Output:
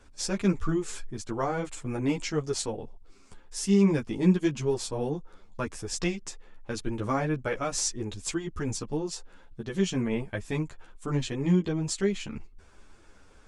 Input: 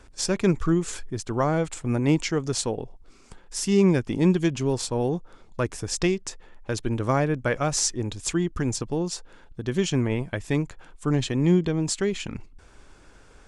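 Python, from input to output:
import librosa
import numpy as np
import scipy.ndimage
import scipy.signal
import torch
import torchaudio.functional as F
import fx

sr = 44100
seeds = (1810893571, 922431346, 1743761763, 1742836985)

y = fx.ensemble(x, sr)
y = F.gain(torch.from_numpy(y), -1.5).numpy()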